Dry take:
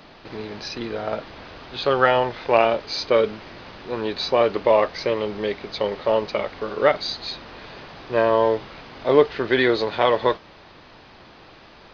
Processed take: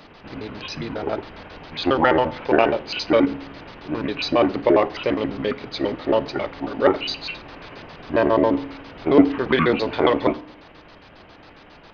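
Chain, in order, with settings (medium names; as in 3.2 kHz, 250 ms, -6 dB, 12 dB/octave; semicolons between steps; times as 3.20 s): pitch shift switched off and on -8 st, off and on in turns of 68 ms; reverberation RT60 0.65 s, pre-delay 3 ms, DRR 14 dB; trim +1 dB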